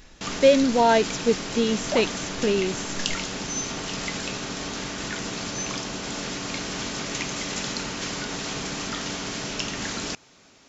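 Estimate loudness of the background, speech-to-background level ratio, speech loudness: -30.0 LUFS, 7.5 dB, -22.5 LUFS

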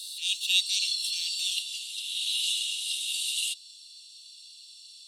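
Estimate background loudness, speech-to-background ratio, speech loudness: -29.0 LUFS, 1.0 dB, -28.0 LUFS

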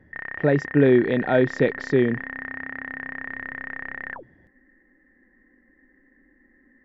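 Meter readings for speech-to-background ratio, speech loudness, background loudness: 12.0 dB, -21.0 LUFS, -33.0 LUFS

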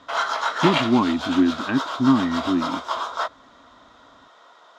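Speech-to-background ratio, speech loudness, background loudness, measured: 4.5 dB, -22.0 LUFS, -26.5 LUFS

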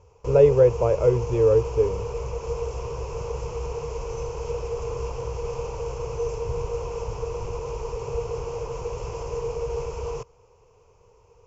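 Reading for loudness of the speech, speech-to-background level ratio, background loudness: -20.0 LUFS, 11.5 dB, -31.5 LUFS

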